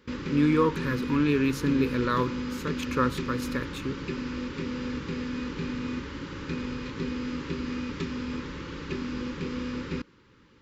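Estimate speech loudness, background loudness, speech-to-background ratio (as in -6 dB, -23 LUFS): -27.5 LUFS, -34.0 LUFS, 6.5 dB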